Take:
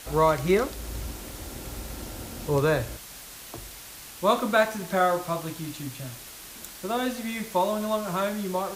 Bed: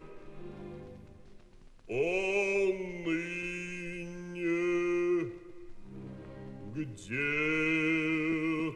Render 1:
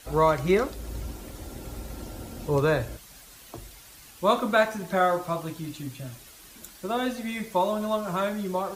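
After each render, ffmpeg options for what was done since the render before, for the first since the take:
-af "afftdn=nr=8:nf=-44"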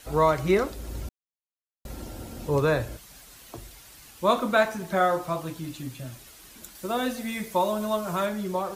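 -filter_complex "[0:a]asettb=1/sr,asplit=3[a][b][c];[a]atrim=end=6.754[d];[b]atrim=start=6.75:end=8.26,asetpts=PTS-STARTPTS,afade=t=in:d=0.004:c=qsin,afade=t=out:st=1.506:d=0.004:c=qsin,highshelf=f=7k:g=6[e];[c]atrim=start=8.256[f];[d][e]acrossfade=d=0.004:c1=hsin:c2=qsin[g];[g][f]acrossfade=d=0.004:c1=qsin:c2=hsin,asplit=3[h][i][j];[h]atrim=end=1.09,asetpts=PTS-STARTPTS,afade=t=out:st=1.086:d=0.004:c=hsin[k];[i]atrim=start=1.09:end=1.85,asetpts=PTS-STARTPTS,volume=0[l];[j]atrim=start=1.85,asetpts=PTS-STARTPTS,afade=t=in:d=0.004:c=hsin[m];[k][l][m]concat=n=3:v=0:a=1"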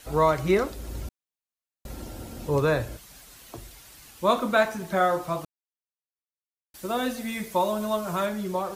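-filter_complex "[0:a]asplit=3[a][b][c];[a]atrim=end=5.45,asetpts=PTS-STARTPTS,afade=t=out:st=5.446:d=0.004:c=hsin[d];[b]atrim=start=5.45:end=6.74,asetpts=PTS-STARTPTS,volume=0[e];[c]atrim=start=6.74,asetpts=PTS-STARTPTS,afade=t=in:d=0.004:c=hsin[f];[d][e][f]concat=n=3:v=0:a=1"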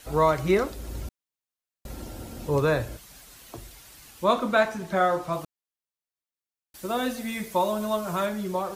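-filter_complex "[0:a]asettb=1/sr,asplit=3[a][b][c];[a]atrim=end=4.244[d];[b]atrim=start=4.24:end=5.33,asetpts=PTS-STARTPTS,afade=t=in:d=0.004:c=qsin,afade=t=out:st=1.086:d=0.004:c=qsin,highshelf=f=11k:g=-10.5[e];[c]atrim=start=5.326[f];[d][e]acrossfade=d=0.004:c1=hsin:c2=qsin[g];[g][f]acrossfade=d=0.004:c1=qsin:c2=hsin"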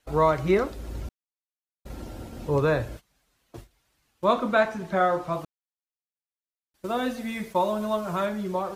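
-af "aemphasis=mode=reproduction:type=cd,agate=range=-18dB:threshold=-40dB:ratio=16:detection=peak"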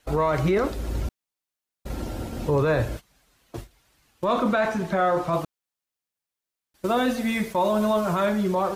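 -af "acontrast=79,alimiter=limit=-14.5dB:level=0:latency=1:release=19"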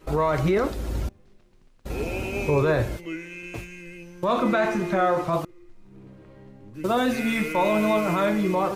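-filter_complex "[1:a]volume=-1.5dB[a];[0:a][a]amix=inputs=2:normalize=0"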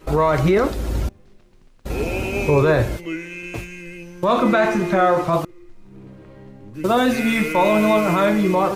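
-af "volume=5.5dB"

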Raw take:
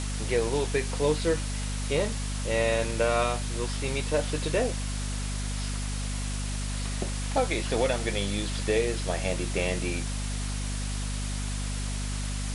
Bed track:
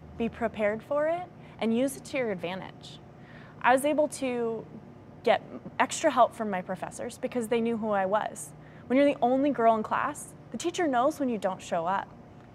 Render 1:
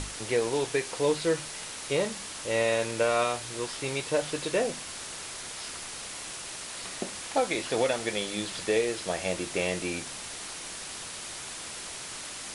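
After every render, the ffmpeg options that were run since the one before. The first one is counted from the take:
-af "bandreject=f=50:t=h:w=6,bandreject=f=100:t=h:w=6,bandreject=f=150:t=h:w=6,bandreject=f=200:t=h:w=6,bandreject=f=250:t=h:w=6"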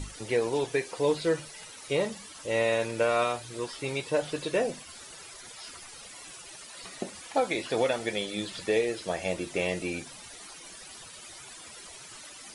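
-af "afftdn=nr=13:nf=-40"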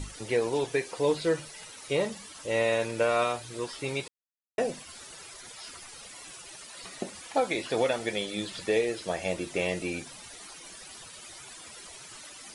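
-filter_complex "[0:a]asplit=3[a][b][c];[a]atrim=end=4.08,asetpts=PTS-STARTPTS,afade=t=out:st=4.076:d=0.004:c=hsin[d];[b]atrim=start=4.08:end=4.58,asetpts=PTS-STARTPTS,volume=0[e];[c]atrim=start=4.58,asetpts=PTS-STARTPTS,afade=t=in:d=0.004:c=hsin[f];[d][e][f]concat=n=3:v=0:a=1"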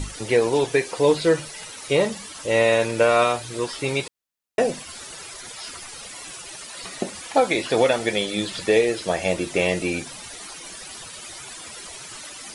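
-af "volume=8dB"

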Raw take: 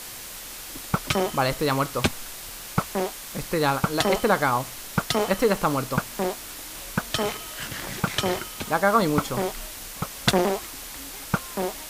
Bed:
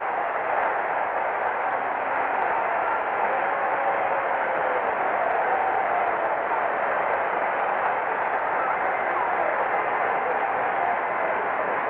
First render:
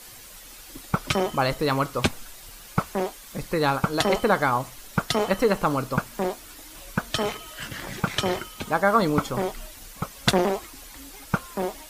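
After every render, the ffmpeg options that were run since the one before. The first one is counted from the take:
-af "afftdn=nr=9:nf=-39"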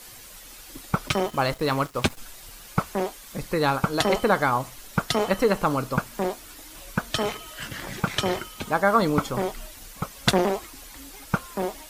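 -filter_complex "[0:a]asettb=1/sr,asplit=3[a][b][c];[a]atrim=end=1.084[d];[b]atrim=start=1.08:end=2.18,asetpts=PTS-STARTPTS,afade=t=in:d=0.004:c=qsin,afade=t=out:st=1.096:d=0.004:c=qsin,aeval=exprs='sgn(val(0))*max(abs(val(0))-0.00841,0)':c=same[e];[c]atrim=start=2.176[f];[d][e]acrossfade=d=0.004:c1=hsin:c2=qsin[g];[g][f]acrossfade=d=0.004:c1=qsin:c2=hsin"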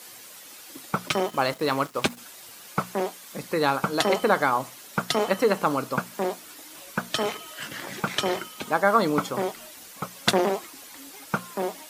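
-af "highpass=190,bandreject=f=60:t=h:w=6,bandreject=f=120:t=h:w=6,bandreject=f=180:t=h:w=6,bandreject=f=240:t=h:w=6"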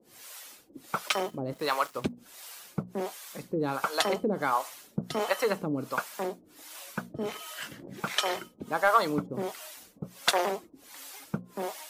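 -filter_complex "[0:a]acrossover=split=470[a][b];[a]aeval=exprs='val(0)*(1-1/2+1/2*cos(2*PI*1.4*n/s))':c=same[c];[b]aeval=exprs='val(0)*(1-1/2-1/2*cos(2*PI*1.4*n/s))':c=same[d];[c][d]amix=inputs=2:normalize=0,asoftclip=type=tanh:threshold=-9.5dB"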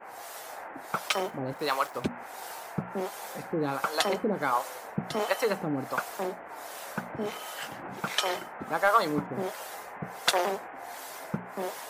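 -filter_complex "[1:a]volume=-18.5dB[a];[0:a][a]amix=inputs=2:normalize=0"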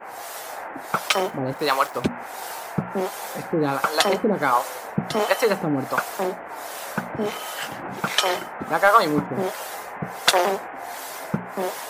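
-af "volume=7.5dB"

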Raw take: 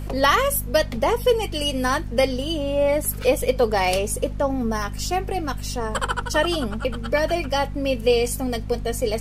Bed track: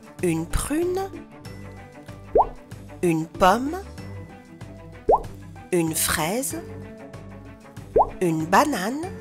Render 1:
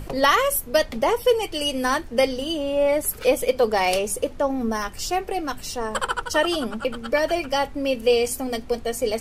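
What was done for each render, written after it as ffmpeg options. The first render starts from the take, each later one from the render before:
-af "bandreject=f=50:t=h:w=6,bandreject=f=100:t=h:w=6,bandreject=f=150:t=h:w=6,bandreject=f=200:t=h:w=6,bandreject=f=250:t=h:w=6"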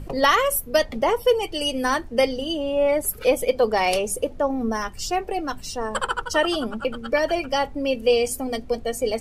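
-af "afftdn=nr=8:nf=-39"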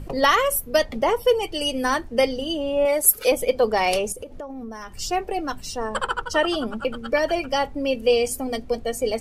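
-filter_complex "[0:a]asettb=1/sr,asplit=3[a][b][c];[a]atrim=end=2.854[d];[b]atrim=start=2.85:end=3.32,asetpts=PTS-STARTPTS,afade=t=in:d=0.004:c=qsin,afade=t=out:st=0.466:d=0.004:c=qsin,bass=f=250:g=-10,treble=f=4k:g=10[e];[c]atrim=start=3.316[f];[d][e]acrossfade=d=0.004:c1=hsin:c2=qsin[g];[g][f]acrossfade=d=0.004:c1=qsin:c2=hsin,asettb=1/sr,asplit=3[h][i][j];[h]atrim=end=4.124[k];[i]atrim=start=4.12:end=4.97,asetpts=PTS-STARTPTS,afade=t=in:d=0.004:c=qsin,afade=t=out:st=0.846:d=0.004:c=qsin,acompressor=threshold=-31dB:ratio=8:attack=3.2:release=140:knee=1:detection=peak[l];[j]atrim=start=4.966[m];[k][l]acrossfade=d=0.004:c1=hsin:c2=qsin[n];[n][m]acrossfade=d=0.004:c1=qsin:c2=hsin,asettb=1/sr,asplit=3[o][p][q];[o]atrim=end=5.844[r];[p]atrim=start=5.84:end=6.68,asetpts=PTS-STARTPTS,afade=t=in:d=0.004:c=qsin,afade=t=out:st=0.836:d=0.004:c=qsin,highshelf=f=7.9k:g=-7[s];[q]atrim=start=6.676[t];[r][s]acrossfade=d=0.004:c1=hsin:c2=qsin[u];[u][t]acrossfade=d=0.004:c1=qsin:c2=hsin"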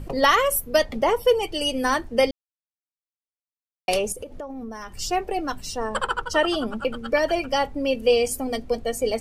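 -filter_complex "[0:a]asplit=3[a][b][c];[a]atrim=end=2.31,asetpts=PTS-STARTPTS,afade=t=out:st=2.306:d=0.004:c=hsin[d];[b]atrim=start=2.31:end=3.88,asetpts=PTS-STARTPTS,volume=0[e];[c]atrim=start=3.88,asetpts=PTS-STARTPTS,afade=t=in:d=0.004:c=hsin[f];[d][e][f]concat=n=3:v=0:a=1"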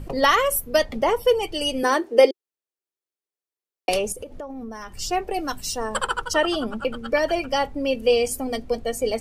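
-filter_complex "[0:a]asettb=1/sr,asplit=3[a][b][c];[a]atrim=end=1.834[d];[b]atrim=start=1.83:end=3.89,asetpts=PTS-STARTPTS,afade=t=in:d=0.004:c=qsin,afade=t=out:st=2.056:d=0.004:c=qsin,highpass=f=380:t=q:w=4.9[e];[c]atrim=start=3.886[f];[d][e]acrossfade=d=0.004:c1=hsin:c2=qsin[g];[g][f]acrossfade=d=0.004:c1=qsin:c2=hsin,asettb=1/sr,asplit=3[h][i][j];[h]atrim=end=5.344[k];[i]atrim=start=5.34:end=6.34,asetpts=PTS-STARTPTS,afade=t=in:d=0.004:c=qsin,afade=t=out:st=0.996:d=0.004:c=qsin,aemphasis=mode=production:type=cd[l];[j]atrim=start=6.336[m];[k][l]acrossfade=d=0.004:c1=hsin:c2=qsin[n];[n][m]acrossfade=d=0.004:c1=qsin:c2=hsin"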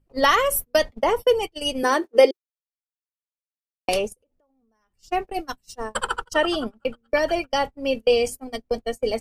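-af "agate=range=-33dB:threshold=-25dB:ratio=16:detection=peak"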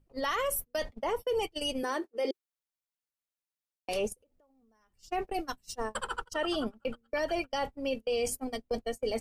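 -af "areverse,acompressor=threshold=-25dB:ratio=12,areverse,alimiter=limit=-23dB:level=0:latency=1:release=68"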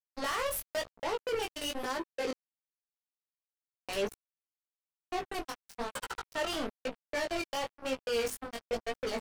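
-af "acrusher=bits=4:mix=0:aa=0.5,flanger=delay=15:depth=6.7:speed=1"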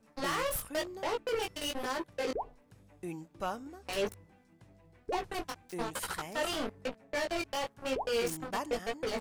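-filter_complex "[1:a]volume=-19.5dB[a];[0:a][a]amix=inputs=2:normalize=0"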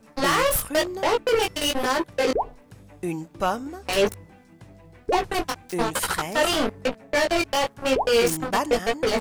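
-af "volume=12dB"

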